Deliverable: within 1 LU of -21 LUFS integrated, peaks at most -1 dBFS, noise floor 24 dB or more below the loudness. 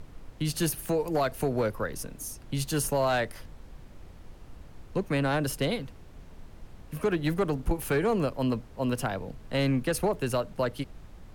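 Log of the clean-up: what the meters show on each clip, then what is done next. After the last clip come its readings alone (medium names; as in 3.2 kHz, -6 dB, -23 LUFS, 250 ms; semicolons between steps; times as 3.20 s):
clipped samples 1.0%; clipping level -19.5 dBFS; noise floor -49 dBFS; noise floor target -54 dBFS; loudness -29.5 LUFS; peak level -19.5 dBFS; loudness target -21.0 LUFS
-> clip repair -19.5 dBFS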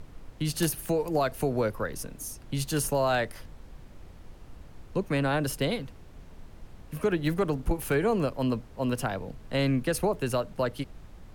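clipped samples 0.0%; noise floor -49 dBFS; noise floor target -53 dBFS
-> noise print and reduce 6 dB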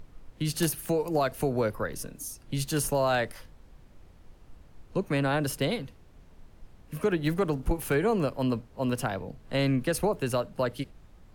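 noise floor -55 dBFS; loudness -29.0 LUFS; peak level -10.5 dBFS; loudness target -21.0 LUFS
-> trim +8 dB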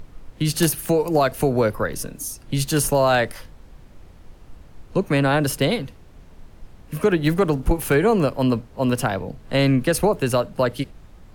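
loudness -21.0 LUFS; peak level -2.5 dBFS; noise floor -47 dBFS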